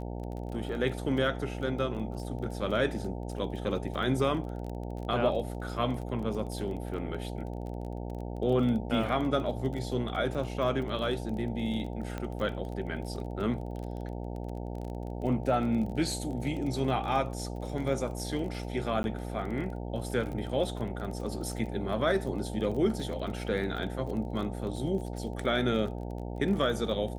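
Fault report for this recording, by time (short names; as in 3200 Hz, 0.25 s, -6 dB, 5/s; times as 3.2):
buzz 60 Hz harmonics 15 -37 dBFS
crackle 26/s -37 dBFS
12.18 pop -22 dBFS
19.03–19.04 gap 11 ms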